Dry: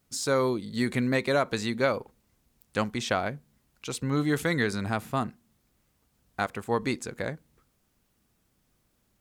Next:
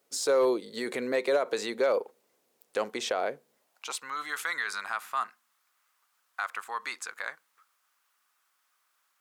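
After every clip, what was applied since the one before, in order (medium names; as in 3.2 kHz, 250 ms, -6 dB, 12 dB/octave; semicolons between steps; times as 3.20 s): peak limiter -20.5 dBFS, peak gain reduction 9 dB; high-pass sweep 460 Hz -> 1.2 kHz, 3.52–4.06 s; hard clipper -17.5 dBFS, distortion -33 dB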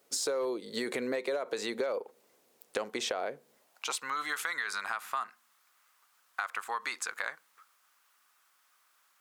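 compression 6:1, threshold -35 dBFS, peak gain reduction 13.5 dB; trim +4.5 dB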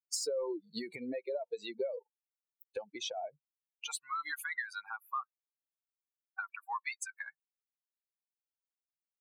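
expander on every frequency bin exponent 3; trim +1.5 dB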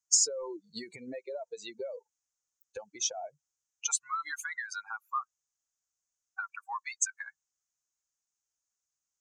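FFT filter 100 Hz 0 dB, 250 Hz -9 dB, 460 Hz -8 dB, 1.4 kHz -1 dB, 2.2 kHz -7 dB, 4.2 kHz -5 dB, 6.6 kHz +14 dB, 11 kHz -14 dB; in parallel at -3 dB: level held to a coarse grid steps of 12 dB; on the sum: trim +2 dB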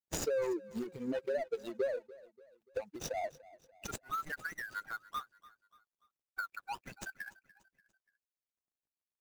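median filter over 41 samples; feedback delay 291 ms, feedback 45%, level -20 dB; trim +6.5 dB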